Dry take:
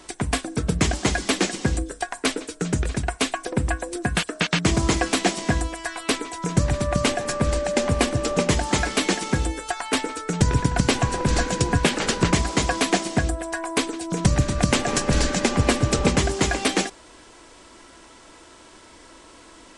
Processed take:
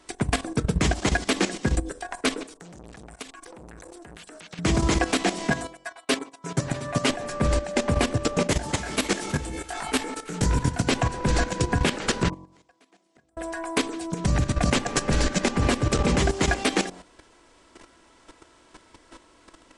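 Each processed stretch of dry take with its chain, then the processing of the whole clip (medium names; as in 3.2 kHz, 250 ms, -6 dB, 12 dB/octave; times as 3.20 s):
2.48–4.59 s: treble shelf 3.5 kHz +6.5 dB + compression 16:1, threshold -29 dBFS + transformer saturation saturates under 2.2 kHz
5.50–7.10 s: expander -23 dBFS + high-pass 240 Hz 6 dB/octave + comb 7.4 ms, depth 95%
8.47–10.85 s: treble shelf 8.2 kHz +9 dB + echo whose repeats swap between lows and highs 163 ms, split 980 Hz, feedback 55%, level -11 dB + detune thickener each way 51 cents
12.28–13.37 s: Bessel high-pass 170 Hz + inverted gate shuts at -19 dBFS, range -37 dB
whole clip: treble shelf 3.7 kHz -4.5 dB; de-hum 45.39 Hz, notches 25; level held to a coarse grid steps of 12 dB; trim +3.5 dB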